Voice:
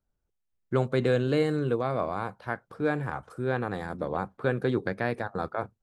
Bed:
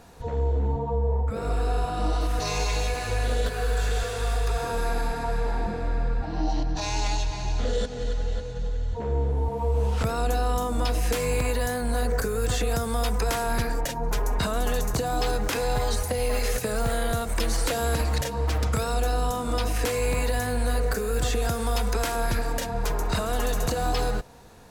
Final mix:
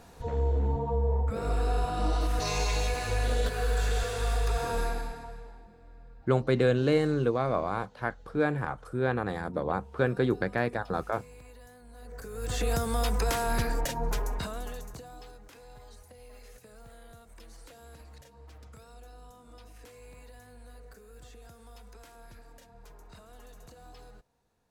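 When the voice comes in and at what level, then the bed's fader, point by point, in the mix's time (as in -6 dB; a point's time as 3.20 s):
5.55 s, +0.5 dB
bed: 4.81 s -2.5 dB
5.66 s -25.5 dB
11.93 s -25.5 dB
12.66 s -2.5 dB
14.05 s -2.5 dB
15.41 s -25.5 dB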